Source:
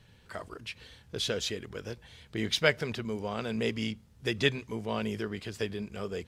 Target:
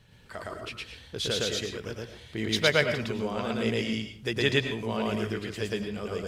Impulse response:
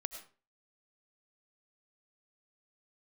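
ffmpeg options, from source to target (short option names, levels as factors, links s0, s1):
-filter_complex "[0:a]asplit=2[s0][s1];[1:a]atrim=start_sample=2205,adelay=113[s2];[s1][s2]afir=irnorm=-1:irlink=0,volume=1.33[s3];[s0][s3]amix=inputs=2:normalize=0"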